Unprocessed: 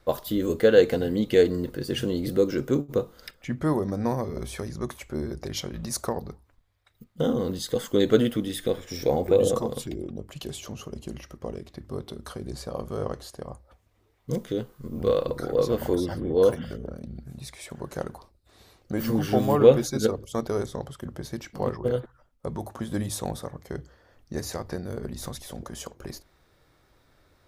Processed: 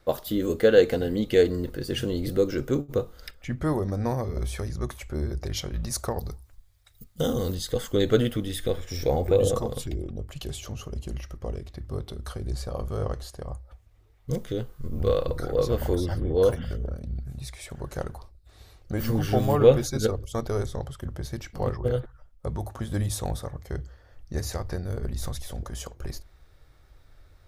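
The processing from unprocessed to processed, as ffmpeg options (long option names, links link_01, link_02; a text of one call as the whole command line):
ffmpeg -i in.wav -filter_complex "[0:a]asettb=1/sr,asplit=3[link_01][link_02][link_03];[link_01]atrim=end=6.184[link_04];[link_02]atrim=start=6.18:end=7.55,asetpts=PTS-STARTPTS,afade=type=in:duration=0.004:curve=qsin,afade=type=out:start_time=1.366:duration=0.004:curve=qsin,bass=frequency=250:gain=0,treble=frequency=4000:gain=13[link_05];[link_03]atrim=start=7.546[link_06];[link_04][link_05]acrossfade=duration=0.004:curve1=hsin:curve2=qsin[link_07];[link_07][link_06]acrossfade=duration=0.004:curve1=qsin:curve2=hsin,bandreject=frequency=1000:width=16,asubboost=boost=5.5:cutoff=85" out.wav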